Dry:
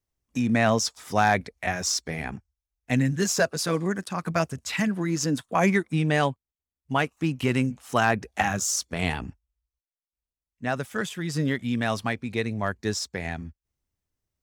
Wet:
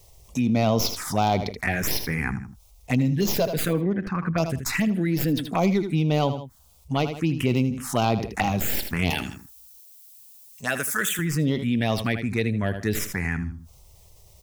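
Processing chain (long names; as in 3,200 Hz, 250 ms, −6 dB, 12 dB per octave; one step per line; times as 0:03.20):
stylus tracing distortion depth 0.069 ms
0:09.10–0:11.19: RIAA equalisation recording
phaser swept by the level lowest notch 260 Hz, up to 1,700 Hz, full sweep at −20.5 dBFS
0:03.68–0:04.38: high-frequency loss of the air 290 metres
on a send: repeating echo 79 ms, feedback 20%, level −15.5 dB
on the sum: envelope flattener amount 50%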